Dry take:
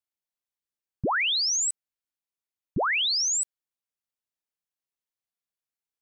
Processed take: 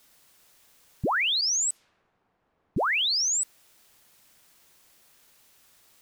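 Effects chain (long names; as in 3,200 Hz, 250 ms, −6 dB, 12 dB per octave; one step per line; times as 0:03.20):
bit-depth reduction 10 bits, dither triangular
0:01.41–0:02.82: low-pass that shuts in the quiet parts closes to 940 Hz, open at −25.5 dBFS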